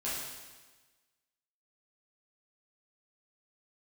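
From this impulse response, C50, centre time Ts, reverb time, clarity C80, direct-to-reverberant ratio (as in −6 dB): −0.5 dB, 87 ms, 1.3 s, 2.5 dB, −9.5 dB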